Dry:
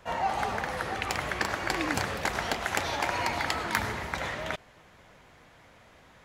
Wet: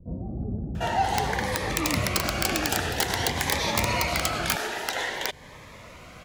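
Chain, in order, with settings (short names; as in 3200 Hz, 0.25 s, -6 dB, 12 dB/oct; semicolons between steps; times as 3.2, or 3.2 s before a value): bands offset in time lows, highs 0.75 s, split 320 Hz; in parallel at +0.5 dB: compressor, threshold -40 dBFS, peak gain reduction 16.5 dB; on the sum: dynamic EQ 1200 Hz, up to -4 dB, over -39 dBFS, Q 1; wrapped overs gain 18 dB; cascading phaser rising 0.51 Hz; gain +6.5 dB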